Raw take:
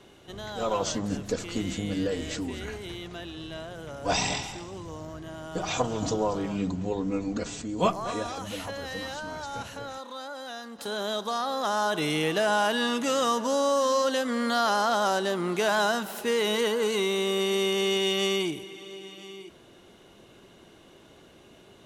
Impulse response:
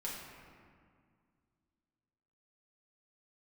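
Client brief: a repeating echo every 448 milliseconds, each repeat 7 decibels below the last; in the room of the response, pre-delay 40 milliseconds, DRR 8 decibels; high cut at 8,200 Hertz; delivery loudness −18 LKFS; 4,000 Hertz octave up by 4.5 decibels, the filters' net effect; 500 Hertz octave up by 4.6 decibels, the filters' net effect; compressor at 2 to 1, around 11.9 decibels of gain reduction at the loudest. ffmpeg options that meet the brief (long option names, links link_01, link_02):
-filter_complex "[0:a]lowpass=8200,equalizer=frequency=500:width_type=o:gain=5.5,equalizer=frequency=4000:width_type=o:gain=6,acompressor=threshold=-39dB:ratio=2,aecho=1:1:448|896|1344|1792|2240:0.447|0.201|0.0905|0.0407|0.0183,asplit=2[link_01][link_02];[1:a]atrim=start_sample=2205,adelay=40[link_03];[link_02][link_03]afir=irnorm=-1:irlink=0,volume=-9dB[link_04];[link_01][link_04]amix=inputs=2:normalize=0,volume=15.5dB"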